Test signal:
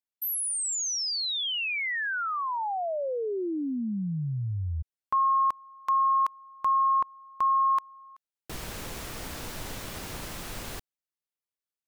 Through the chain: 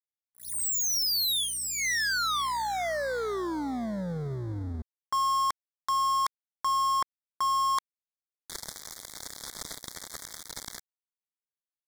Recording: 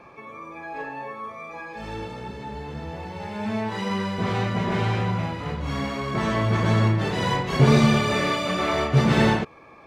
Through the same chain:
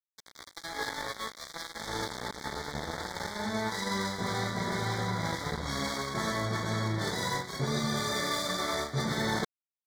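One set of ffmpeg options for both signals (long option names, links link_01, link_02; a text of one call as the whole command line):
ffmpeg -i in.wav -af "lowpass=8400,aeval=exprs='val(0)+0.00316*(sin(2*PI*60*n/s)+sin(2*PI*2*60*n/s)/2+sin(2*PI*3*60*n/s)/3+sin(2*PI*4*60*n/s)/4+sin(2*PI*5*60*n/s)/5)':channel_layout=same,aeval=exprs='sgn(val(0))*max(abs(val(0))-0.0224,0)':channel_layout=same,highshelf=frequency=2400:gain=11.5,areverse,acompressor=threshold=-29dB:ratio=12:attack=1.8:release=484:knee=1:detection=rms,areverse,asuperstop=centerf=2700:order=8:qfactor=2.3,lowshelf=frequency=150:gain=-4,volume=6.5dB" out.wav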